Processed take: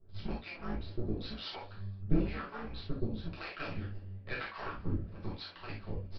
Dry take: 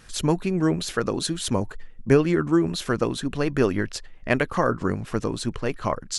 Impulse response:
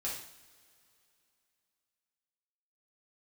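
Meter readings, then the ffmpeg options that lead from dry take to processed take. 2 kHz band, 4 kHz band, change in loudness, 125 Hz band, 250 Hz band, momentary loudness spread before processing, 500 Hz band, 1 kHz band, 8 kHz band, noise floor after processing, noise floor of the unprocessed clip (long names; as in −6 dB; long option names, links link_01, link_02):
−13.5 dB, −13.5 dB, −15.5 dB, −11.5 dB, −16.0 dB, 8 LU, −20.5 dB, −15.5 dB, below −40 dB, −51 dBFS, −43 dBFS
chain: -filter_complex "[0:a]acrossover=split=430|1500[link_01][link_02][link_03];[link_02]acompressor=threshold=-38dB:ratio=6[link_04];[link_03]asoftclip=type=hard:threshold=-23.5dB[link_05];[link_01][link_04][link_05]amix=inputs=3:normalize=0,afreqshift=-110,aeval=exprs='max(val(0),0)':channel_layout=same,acrossover=split=580[link_06][link_07];[link_06]aeval=exprs='val(0)*(1-1/2+1/2*cos(2*PI*1*n/s))':channel_layout=same[link_08];[link_07]aeval=exprs='val(0)*(1-1/2-1/2*cos(2*PI*1*n/s))':channel_layout=same[link_09];[link_08][link_09]amix=inputs=2:normalize=0,asplit=5[link_10][link_11][link_12][link_13][link_14];[link_11]adelay=117,afreqshift=87,volume=-22dB[link_15];[link_12]adelay=234,afreqshift=174,volume=-26.6dB[link_16];[link_13]adelay=351,afreqshift=261,volume=-31.2dB[link_17];[link_14]adelay=468,afreqshift=348,volume=-35.7dB[link_18];[link_10][link_15][link_16][link_17][link_18]amix=inputs=5:normalize=0[link_19];[1:a]atrim=start_sample=2205,atrim=end_sample=3969[link_20];[link_19][link_20]afir=irnorm=-1:irlink=0,aresample=11025,aresample=44100,volume=-3.5dB"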